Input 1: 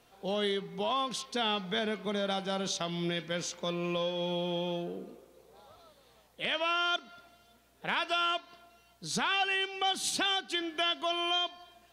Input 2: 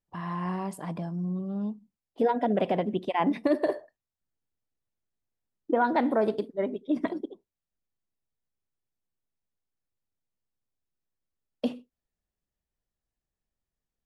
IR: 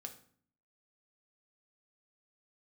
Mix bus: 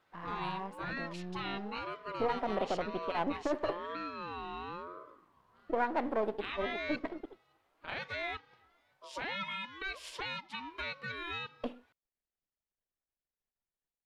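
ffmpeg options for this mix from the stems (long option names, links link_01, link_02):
-filter_complex "[0:a]aeval=exprs='val(0)*sin(2*PI*690*n/s+690*0.2/1*sin(2*PI*1*n/s))':channel_layout=same,volume=-4dB[link_01];[1:a]aeval=exprs='if(lt(val(0),0),0.251*val(0),val(0))':channel_layout=same,volume=-3.5dB[link_02];[link_01][link_02]amix=inputs=2:normalize=0,bass=frequency=250:gain=-8,treble=frequency=4000:gain=-13"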